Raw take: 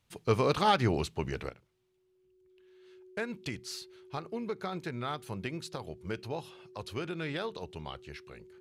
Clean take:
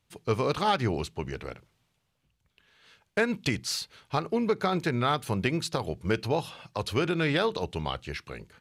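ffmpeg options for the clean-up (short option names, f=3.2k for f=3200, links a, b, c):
-af "bandreject=f=370:w=30,asetnsamples=n=441:p=0,asendcmd='1.49 volume volume 10dB',volume=0dB"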